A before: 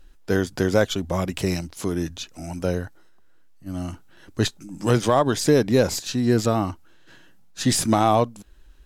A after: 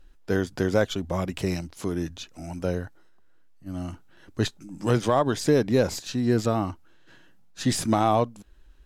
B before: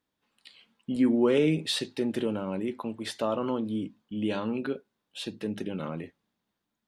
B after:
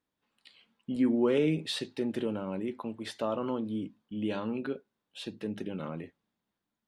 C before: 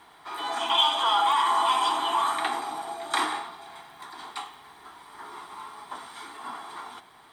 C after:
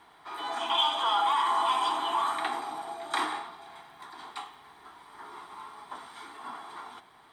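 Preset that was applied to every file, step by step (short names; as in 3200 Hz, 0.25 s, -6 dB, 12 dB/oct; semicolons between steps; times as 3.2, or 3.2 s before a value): high shelf 4600 Hz -5 dB; gain -3 dB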